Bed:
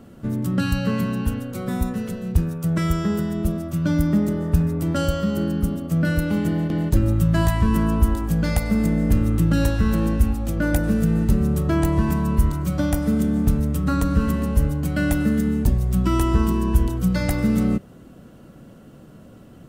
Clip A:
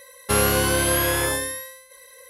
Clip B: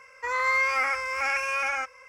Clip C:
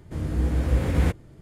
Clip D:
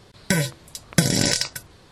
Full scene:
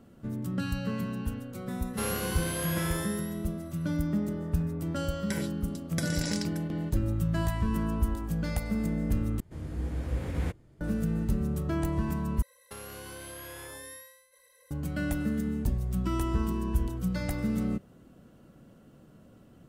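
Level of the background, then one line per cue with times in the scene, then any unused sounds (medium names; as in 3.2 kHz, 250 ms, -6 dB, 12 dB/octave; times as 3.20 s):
bed -10 dB
1.68 s: add A -13 dB
5.00 s: add D -15 dB
9.40 s: replace with C -9.5 dB
12.42 s: replace with A -14.5 dB + compression, threshold -25 dBFS
not used: B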